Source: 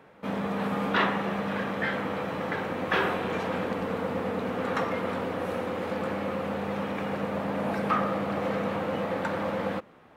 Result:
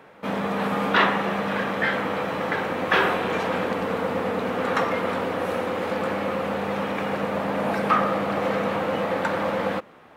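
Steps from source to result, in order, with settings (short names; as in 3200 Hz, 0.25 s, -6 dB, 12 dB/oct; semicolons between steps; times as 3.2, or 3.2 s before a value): low shelf 290 Hz -6 dB; gain +6.5 dB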